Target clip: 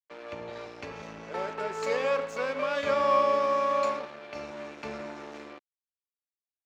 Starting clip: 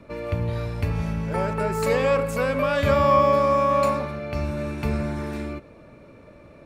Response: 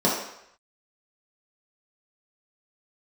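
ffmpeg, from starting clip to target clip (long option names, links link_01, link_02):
-filter_complex "[0:a]lowpass=frequency=6600:width_type=q:width=4.2,aeval=exprs='sgn(val(0))*max(abs(val(0))-0.02,0)':channel_layout=same,acrossover=split=260 4800:gain=0.0631 1 0.178[link_01][link_02][link_03];[link_01][link_02][link_03]amix=inputs=3:normalize=0,volume=-4.5dB"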